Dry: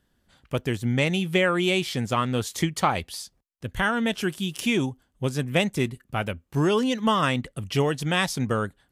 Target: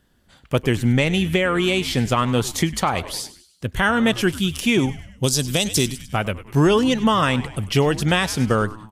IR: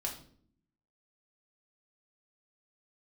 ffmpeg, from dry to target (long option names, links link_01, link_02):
-filter_complex "[0:a]asettb=1/sr,asplit=3[link_01][link_02][link_03];[link_01]atrim=end=5.234[link_04];[link_02]atrim=start=5.23:end=6.03,asetpts=PTS-STARTPTS,afade=type=in:duration=0.004:curve=qsin,afade=type=out:start_time=0.796:duration=0.004:curve=qsin,highshelf=frequency=3100:width_type=q:width=1.5:gain=13.5[link_05];[link_03]atrim=start=6.026[link_06];[link_04][link_05]acrossfade=duration=0.004:curve1=hsin:curve2=qsin[link_07];[link_07][link_06]acrossfade=duration=0.004:curve1=qsin:curve2=hsin,asplit=2[link_08][link_09];[link_09]asplit=4[link_10][link_11][link_12][link_13];[link_10]adelay=100,afreqshift=-110,volume=-17dB[link_14];[link_11]adelay=200,afreqshift=-220,volume=-23dB[link_15];[link_12]adelay=300,afreqshift=-330,volume=-29dB[link_16];[link_13]adelay=400,afreqshift=-440,volume=-35.1dB[link_17];[link_14][link_15][link_16][link_17]amix=inputs=4:normalize=0[link_18];[link_08][link_18]amix=inputs=2:normalize=0,asettb=1/sr,asplit=3[link_19][link_20][link_21];[link_19]atrim=end=1.284[link_22];[link_20]atrim=start=1.28:end=1.94,asetpts=PTS-STARTPTS,afade=type=in:duration=0.004:curve=qsin,afade=type=out:start_time=0.656:duration=0.004:curve=qsin,acompressor=threshold=-23dB:ratio=5[link_23];[link_21]atrim=start=1.936[link_24];[link_22][link_23]acrossfade=duration=0.004:curve1=hsin:curve2=qsin[link_25];[link_25][link_24]acrossfade=duration=0.004:curve1=qsin:curve2=hsin,alimiter=limit=-14.5dB:level=0:latency=1:release=268,volume=7dB"